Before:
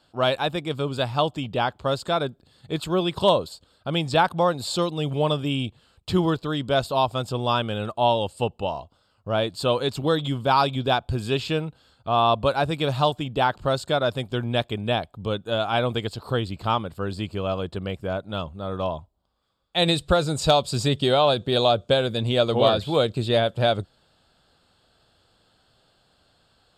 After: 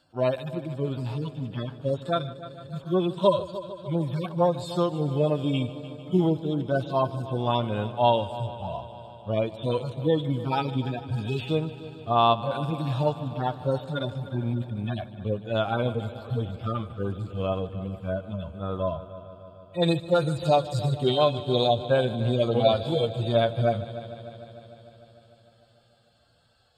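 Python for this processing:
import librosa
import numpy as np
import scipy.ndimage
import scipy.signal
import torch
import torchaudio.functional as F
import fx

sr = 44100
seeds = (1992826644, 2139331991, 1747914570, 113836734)

y = fx.hpss_only(x, sr, part='harmonic')
y = fx.echo_heads(y, sr, ms=150, heads='first and second', feedback_pct=68, wet_db=-18.0)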